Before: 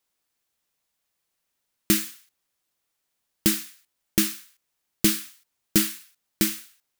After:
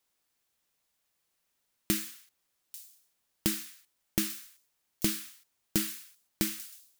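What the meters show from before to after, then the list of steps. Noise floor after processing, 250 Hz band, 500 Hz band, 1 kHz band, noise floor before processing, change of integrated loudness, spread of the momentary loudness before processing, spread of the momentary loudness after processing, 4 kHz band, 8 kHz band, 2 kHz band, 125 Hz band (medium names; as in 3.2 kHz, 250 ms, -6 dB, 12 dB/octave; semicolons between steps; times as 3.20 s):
-79 dBFS, -8.5 dB, -8.0 dB, -6.5 dB, -79 dBFS, -8.5 dB, 17 LU, 16 LU, -8.0 dB, -8.0 dB, -8.0 dB, -6.5 dB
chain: compression 2:1, threshold -32 dBFS, peak gain reduction 10 dB; feedback echo behind a high-pass 841 ms, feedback 36%, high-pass 4.9 kHz, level -14 dB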